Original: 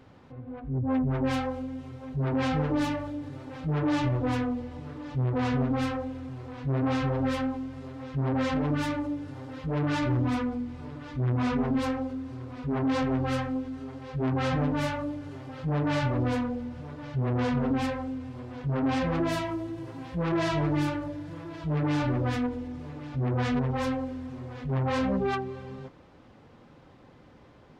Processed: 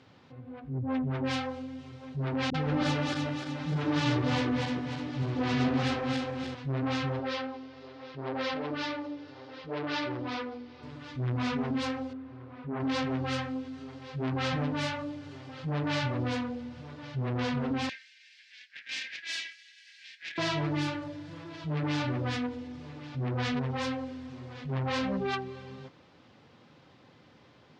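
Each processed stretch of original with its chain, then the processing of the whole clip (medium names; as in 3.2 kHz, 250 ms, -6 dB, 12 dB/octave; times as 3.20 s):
2.50–6.55 s: backward echo that repeats 151 ms, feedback 69%, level -2 dB + phase dispersion highs, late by 44 ms, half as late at 330 Hz
7.19–10.83 s: Chebyshev low-pass 5.1 kHz, order 3 + resonant low shelf 270 Hz -9.5 dB, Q 1.5
12.13–12.80 s: low-pass 1.8 kHz + bass shelf 230 Hz -5 dB
17.89–20.38 s: rippled Chebyshev high-pass 1.6 kHz, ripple 3 dB + peaking EQ 3.3 kHz +6.5 dB 2.6 oct + valve stage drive 30 dB, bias 0.5
whole clip: Chebyshev band-pass 110–4700 Hz, order 2; treble shelf 2.3 kHz +11.5 dB; trim -4 dB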